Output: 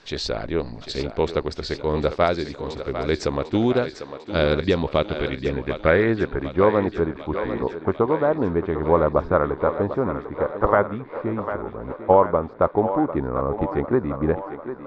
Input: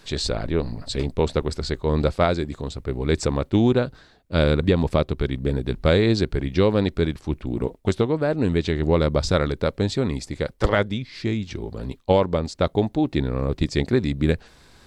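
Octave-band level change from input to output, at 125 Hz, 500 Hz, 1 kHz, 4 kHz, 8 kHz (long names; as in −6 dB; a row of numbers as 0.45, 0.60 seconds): −5.5 dB, +2.0 dB, +6.0 dB, −3.5 dB, can't be measured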